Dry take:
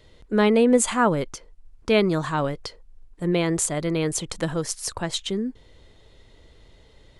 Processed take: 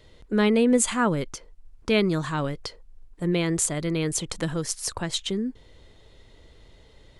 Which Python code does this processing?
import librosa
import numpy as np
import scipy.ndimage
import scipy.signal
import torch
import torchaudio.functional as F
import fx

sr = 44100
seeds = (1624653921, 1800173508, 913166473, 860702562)

y = fx.dynamic_eq(x, sr, hz=740.0, q=0.82, threshold_db=-34.0, ratio=4.0, max_db=-6)